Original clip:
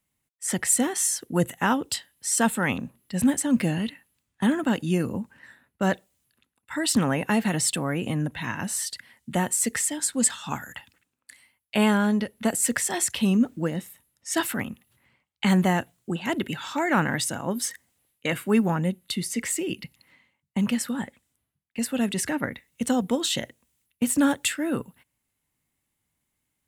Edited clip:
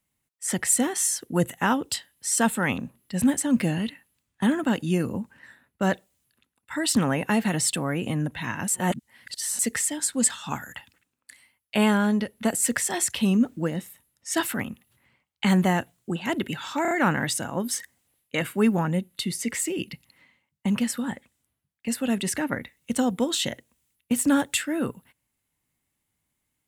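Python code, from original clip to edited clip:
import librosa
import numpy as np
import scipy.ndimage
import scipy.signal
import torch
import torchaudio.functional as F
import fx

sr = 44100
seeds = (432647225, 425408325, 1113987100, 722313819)

y = fx.edit(x, sr, fx.reverse_span(start_s=8.68, length_s=0.91),
    fx.stutter(start_s=16.82, slice_s=0.03, count=4), tone=tone)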